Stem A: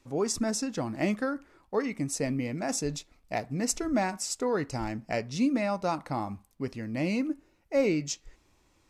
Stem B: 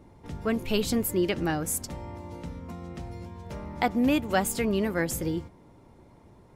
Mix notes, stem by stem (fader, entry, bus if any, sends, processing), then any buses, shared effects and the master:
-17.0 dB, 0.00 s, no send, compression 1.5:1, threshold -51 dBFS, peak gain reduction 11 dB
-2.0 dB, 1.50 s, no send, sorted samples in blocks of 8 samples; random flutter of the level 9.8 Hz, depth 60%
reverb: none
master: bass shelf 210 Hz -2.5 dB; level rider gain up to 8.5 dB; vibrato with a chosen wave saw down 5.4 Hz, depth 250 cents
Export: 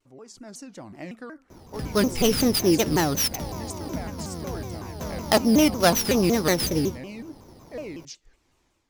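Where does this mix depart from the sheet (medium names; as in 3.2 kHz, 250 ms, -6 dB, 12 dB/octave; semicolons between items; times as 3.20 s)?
stem A -17.0 dB -> -8.5 dB; stem B: missing random flutter of the level 9.8 Hz, depth 60%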